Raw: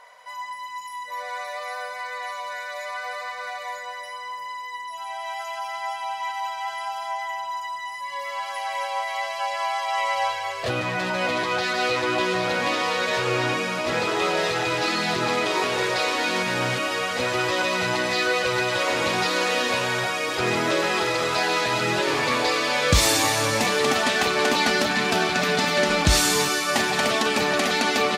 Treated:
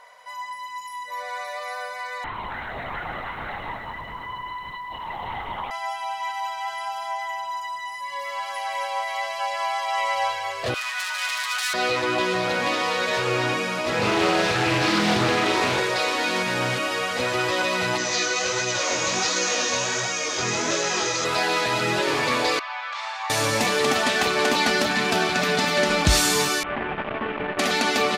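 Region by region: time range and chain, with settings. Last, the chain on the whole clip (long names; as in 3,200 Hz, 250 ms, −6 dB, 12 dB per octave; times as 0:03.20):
0:02.24–0:05.71: linear-prediction vocoder at 8 kHz whisper + feedback echo at a low word length 102 ms, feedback 80%, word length 9 bits, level −14.5 dB
0:10.74–0:11.74: phase distortion by the signal itself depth 0.084 ms + high-pass filter 1,100 Hz 24 dB per octave + high-shelf EQ 5,300 Hz +8 dB
0:13.99–0:15.80: low-shelf EQ 250 Hz +8.5 dB + flutter between parallel walls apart 6.7 metres, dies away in 0.52 s + highs frequency-modulated by the lows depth 0.3 ms
0:17.98–0:21.25: low-pass with resonance 6,400 Hz, resonance Q 6.8 + chorus effect 1.4 Hz, delay 16.5 ms, depth 7 ms
0:22.59–0:23.30: Butterworth high-pass 770 Hz 48 dB per octave + head-to-tape spacing loss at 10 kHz 40 dB + notch filter 1,800 Hz, Q 27
0:26.63–0:27.59: variable-slope delta modulation 16 kbit/s + saturating transformer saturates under 810 Hz
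whole clip: no processing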